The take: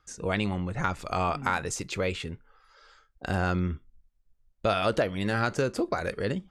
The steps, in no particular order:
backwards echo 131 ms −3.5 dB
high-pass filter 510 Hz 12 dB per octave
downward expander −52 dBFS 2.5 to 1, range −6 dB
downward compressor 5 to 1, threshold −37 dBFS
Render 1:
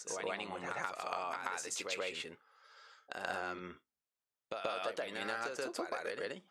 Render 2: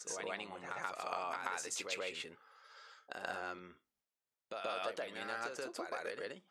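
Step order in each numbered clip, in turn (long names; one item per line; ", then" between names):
high-pass filter, then downward expander, then downward compressor, then backwards echo
downward compressor, then backwards echo, then downward expander, then high-pass filter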